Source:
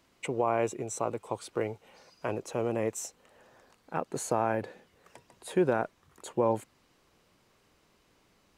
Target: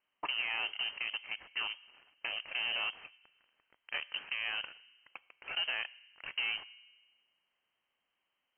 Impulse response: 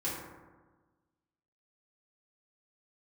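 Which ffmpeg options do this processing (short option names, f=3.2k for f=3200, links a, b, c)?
-filter_complex "[0:a]highshelf=f=2.1k:g=10,acrossover=split=250|1800[a][b][c];[a]acompressor=threshold=-43dB:ratio=4[d];[b]acompressor=threshold=-38dB:ratio=4[e];[c]acompressor=threshold=-42dB:ratio=4[f];[d][e][f]amix=inputs=3:normalize=0,alimiter=level_in=3dB:limit=-24dB:level=0:latency=1:release=302,volume=-3dB,volume=32.5dB,asoftclip=hard,volume=-32.5dB,aeval=exprs='0.0251*(cos(1*acos(clip(val(0)/0.0251,-1,1)))-cos(1*PI/2))+0.000794*(cos(3*acos(clip(val(0)/0.0251,-1,1)))-cos(3*PI/2))+0.00126*(cos(5*acos(clip(val(0)/0.0251,-1,1)))-cos(5*PI/2))+0.00447*(cos(7*acos(clip(val(0)/0.0251,-1,1)))-cos(7*PI/2))':c=same,asplit=2[g][h];[1:a]atrim=start_sample=2205[i];[h][i]afir=irnorm=-1:irlink=0,volume=-22.5dB[j];[g][j]amix=inputs=2:normalize=0,lowpass=f=2.7k:t=q:w=0.5098,lowpass=f=2.7k:t=q:w=0.6013,lowpass=f=2.7k:t=q:w=0.9,lowpass=f=2.7k:t=q:w=2.563,afreqshift=-3200,volume=4.5dB"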